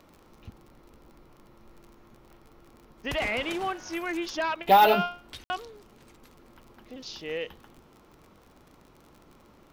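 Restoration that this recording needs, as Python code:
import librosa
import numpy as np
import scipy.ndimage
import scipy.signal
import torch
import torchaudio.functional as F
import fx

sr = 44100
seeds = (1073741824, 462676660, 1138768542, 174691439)

y = fx.fix_declip(x, sr, threshold_db=-11.0)
y = fx.fix_declick_ar(y, sr, threshold=6.5)
y = fx.fix_ambience(y, sr, seeds[0], print_start_s=8.39, print_end_s=8.89, start_s=5.44, end_s=5.5)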